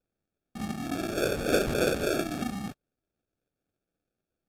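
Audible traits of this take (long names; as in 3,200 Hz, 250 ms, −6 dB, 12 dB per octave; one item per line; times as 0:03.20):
phaser sweep stages 8, 3.4 Hz, lowest notch 560–1,400 Hz
aliases and images of a low sample rate 1,000 Hz, jitter 0%
AAC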